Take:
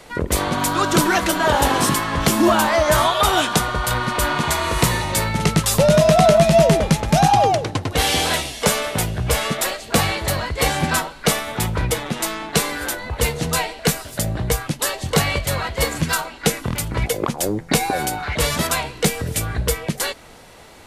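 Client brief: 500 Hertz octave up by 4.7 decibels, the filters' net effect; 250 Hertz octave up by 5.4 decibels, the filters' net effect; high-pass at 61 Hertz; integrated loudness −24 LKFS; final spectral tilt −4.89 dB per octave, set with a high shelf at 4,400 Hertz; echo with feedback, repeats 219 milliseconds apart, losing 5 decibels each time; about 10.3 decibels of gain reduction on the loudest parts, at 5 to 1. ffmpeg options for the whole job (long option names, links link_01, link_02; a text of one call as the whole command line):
ffmpeg -i in.wav -af "highpass=61,equalizer=frequency=250:width_type=o:gain=6.5,equalizer=frequency=500:width_type=o:gain=5,highshelf=frequency=4400:gain=-5.5,acompressor=threshold=-18dB:ratio=5,aecho=1:1:219|438|657|876|1095|1314|1533:0.562|0.315|0.176|0.0988|0.0553|0.031|0.0173,volume=-2.5dB" out.wav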